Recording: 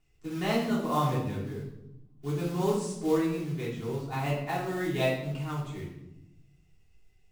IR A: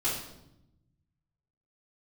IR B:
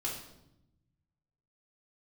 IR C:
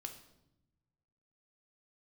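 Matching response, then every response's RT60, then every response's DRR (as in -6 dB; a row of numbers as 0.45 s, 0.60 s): A; 0.85 s, 0.85 s, 0.85 s; -11.5 dB, -5.0 dB, 4.0 dB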